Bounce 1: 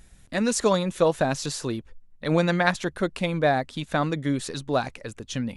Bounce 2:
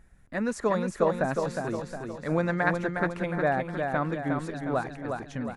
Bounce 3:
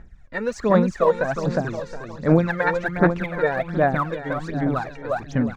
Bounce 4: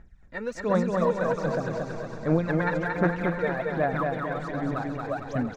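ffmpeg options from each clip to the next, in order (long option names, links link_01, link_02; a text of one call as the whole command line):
ffmpeg -i in.wav -af "highshelf=frequency=2400:width_type=q:width=1.5:gain=-9.5,aecho=1:1:360|720|1080|1440|1800|2160:0.562|0.276|0.135|0.0662|0.0324|0.0159,volume=-5dB" out.wav
ffmpeg -i in.wav -af "lowpass=frequency=6400:width=0.5412,lowpass=frequency=6400:width=1.3066,aphaser=in_gain=1:out_gain=1:delay=2.2:decay=0.71:speed=1.3:type=sinusoidal,volume=2dB" out.wav
ffmpeg -i in.wav -af "aecho=1:1:228|456|684|912|1140|1368|1596:0.668|0.348|0.181|0.094|0.0489|0.0254|0.0132,volume=-7dB" out.wav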